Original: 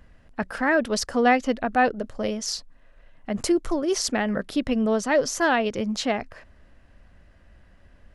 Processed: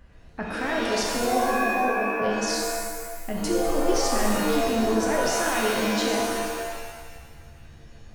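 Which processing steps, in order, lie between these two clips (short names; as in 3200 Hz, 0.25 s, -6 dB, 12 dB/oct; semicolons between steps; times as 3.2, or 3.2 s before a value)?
1.15–2.22 elliptic band-pass 210–740 Hz; limiter -20.5 dBFS, peak gain reduction 10.5 dB; shimmer reverb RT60 1.5 s, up +7 st, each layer -2 dB, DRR -1.5 dB; gain -1.5 dB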